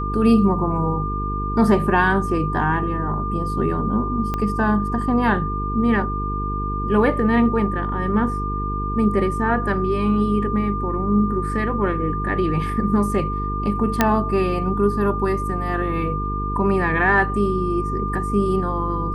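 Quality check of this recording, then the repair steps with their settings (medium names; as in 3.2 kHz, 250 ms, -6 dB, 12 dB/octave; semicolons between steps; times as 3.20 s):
buzz 50 Hz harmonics 9 -26 dBFS
whine 1.2 kHz -26 dBFS
4.34 s: pop -12 dBFS
14.01 s: pop -1 dBFS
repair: de-click; band-stop 1.2 kHz, Q 30; de-hum 50 Hz, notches 9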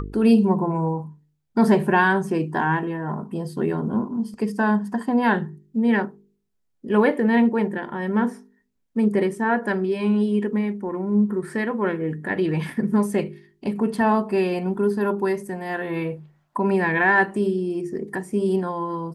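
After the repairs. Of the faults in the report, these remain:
4.34 s: pop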